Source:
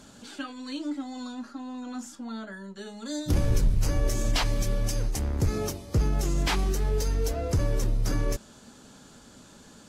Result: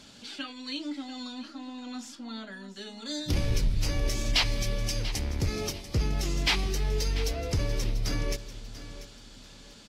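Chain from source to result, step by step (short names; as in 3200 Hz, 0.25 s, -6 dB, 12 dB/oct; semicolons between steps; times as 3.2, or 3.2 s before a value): band shelf 3300 Hz +9 dB; on a send: feedback echo 0.69 s, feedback 30%, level -14 dB; on the sum: gain -3.5 dB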